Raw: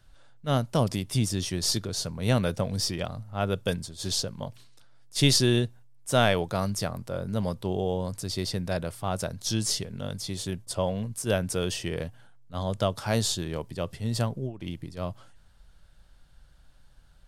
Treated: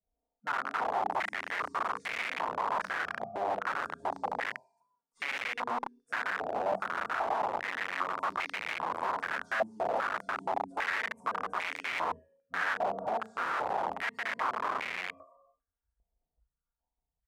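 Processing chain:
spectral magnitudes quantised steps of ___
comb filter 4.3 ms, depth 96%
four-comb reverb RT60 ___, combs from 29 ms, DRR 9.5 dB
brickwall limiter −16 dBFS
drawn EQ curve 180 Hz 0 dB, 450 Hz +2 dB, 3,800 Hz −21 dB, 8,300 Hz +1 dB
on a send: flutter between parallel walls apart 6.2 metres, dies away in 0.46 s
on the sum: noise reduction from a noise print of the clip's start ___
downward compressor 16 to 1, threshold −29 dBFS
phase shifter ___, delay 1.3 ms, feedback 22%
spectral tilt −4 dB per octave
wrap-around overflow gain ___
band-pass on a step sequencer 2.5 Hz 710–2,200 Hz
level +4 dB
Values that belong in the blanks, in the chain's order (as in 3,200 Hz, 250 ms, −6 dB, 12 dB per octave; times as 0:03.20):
30 dB, 1.3 s, 24 dB, 1.1 Hz, 21 dB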